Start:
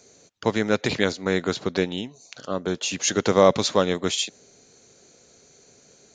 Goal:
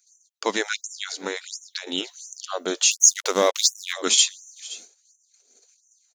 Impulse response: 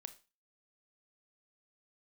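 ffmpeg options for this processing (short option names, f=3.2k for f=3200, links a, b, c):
-filter_complex "[0:a]aecho=1:1:521:0.1,asplit=2[a][b];[b]alimiter=limit=-12.5dB:level=0:latency=1:release=373,volume=-0.5dB[c];[a][c]amix=inputs=2:normalize=0,aemphasis=mode=production:type=75kf,agate=range=-20dB:threshold=-38dB:ratio=16:detection=peak,flanger=delay=0.1:depth=1.6:regen=64:speed=0.54:shape=triangular,asettb=1/sr,asplit=3[d][e][f];[d]atrim=end=0.844[g];[e]atrim=start=0.84:end=1.87,asetpts=PTS-STARTPTS,afade=t=in:d=0.004:c=qsin,afade=t=out:st=1.026:d=0.004:c=qsin,acompressor=threshold=-23dB:ratio=6[h];[f]atrim=start=1.866[i];[g][h]acrossfade=d=0.004:c1=hsin:c2=qsin[j];[j][i]acrossfade=d=0.004:c1=qsin:c2=hsin,asettb=1/sr,asplit=3[k][l][m];[k]atrim=end=2.914[n];[l]atrim=start=2.91:end=3.93,asetpts=PTS-STARTPTS,afade=t=in:d=0.004:c=qsin,afade=t=out:st=1.016:d=0.004:c=qsin,aeval=exprs='sgn(val(0))*max(abs(val(0))-0.0237,0)':c=same[o];[m]atrim=start=3.926[p];[n][o]acrossfade=d=0.004:c1=hsin:c2=qsin[q];[q][p]acrossfade=d=0.004:c1=qsin:c2=hsin,afftfilt=real='re*gte(b*sr/1024,200*pow(5800/200,0.5+0.5*sin(2*PI*1.4*pts/sr)))':imag='im*gte(b*sr/1024,200*pow(5800/200,0.5+0.5*sin(2*PI*1.4*pts/sr)))':win_size=1024:overlap=0.75"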